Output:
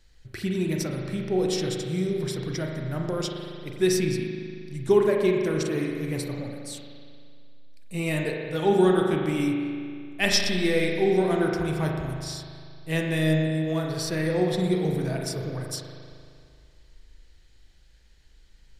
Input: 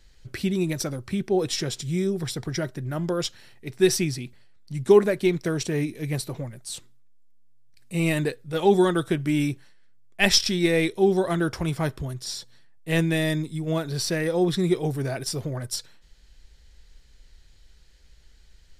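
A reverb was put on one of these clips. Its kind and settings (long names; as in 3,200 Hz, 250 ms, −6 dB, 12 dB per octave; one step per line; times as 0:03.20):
spring reverb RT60 2.2 s, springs 38 ms, chirp 25 ms, DRR 0.5 dB
level −4 dB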